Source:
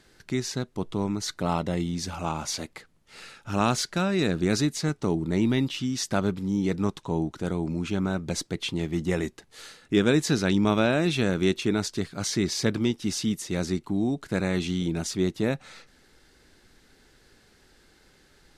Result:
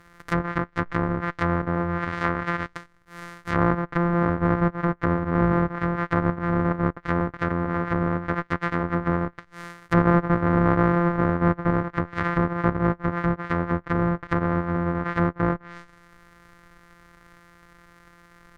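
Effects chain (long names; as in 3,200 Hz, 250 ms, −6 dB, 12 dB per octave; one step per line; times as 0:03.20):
samples sorted by size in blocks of 256 samples
treble cut that deepens with the level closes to 860 Hz, closed at −23.5 dBFS
flat-topped bell 1,500 Hz +11 dB 1.2 octaves
level +3 dB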